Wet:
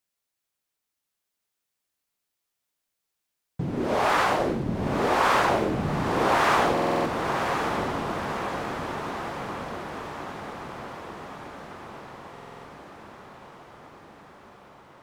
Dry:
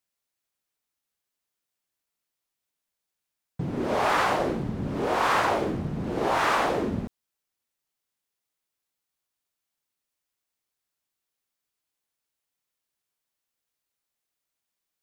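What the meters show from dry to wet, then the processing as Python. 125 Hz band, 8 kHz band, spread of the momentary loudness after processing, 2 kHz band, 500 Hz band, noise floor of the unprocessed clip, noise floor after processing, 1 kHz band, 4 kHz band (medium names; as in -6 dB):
+2.5 dB, +3.0 dB, 22 LU, +3.0 dB, +3.0 dB, -85 dBFS, -84 dBFS, +3.5 dB, +3.0 dB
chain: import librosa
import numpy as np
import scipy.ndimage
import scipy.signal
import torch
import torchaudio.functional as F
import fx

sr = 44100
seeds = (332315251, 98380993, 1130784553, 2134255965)

y = fx.echo_diffused(x, sr, ms=1057, feedback_pct=66, wet_db=-5.0)
y = fx.buffer_glitch(y, sr, at_s=(6.73, 12.32), block=2048, repeats=6)
y = y * librosa.db_to_amplitude(1.0)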